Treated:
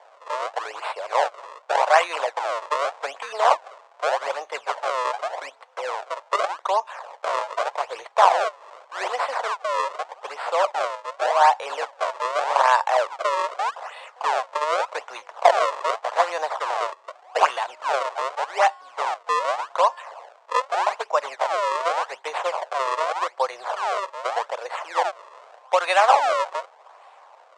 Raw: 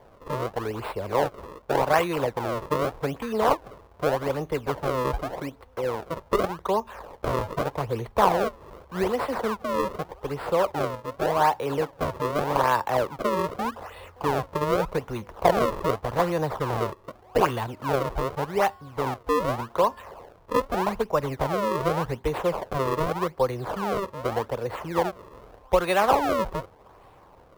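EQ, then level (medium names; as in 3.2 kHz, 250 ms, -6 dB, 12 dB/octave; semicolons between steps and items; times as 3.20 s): elliptic band-pass 650–8000 Hz, stop band 50 dB; +6.0 dB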